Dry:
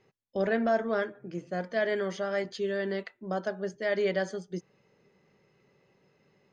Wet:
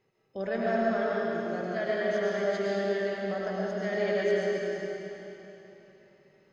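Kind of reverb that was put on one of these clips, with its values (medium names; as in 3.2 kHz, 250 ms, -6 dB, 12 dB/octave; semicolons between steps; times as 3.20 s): algorithmic reverb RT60 3.4 s, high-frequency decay 0.95×, pre-delay 65 ms, DRR -6 dB; trim -6 dB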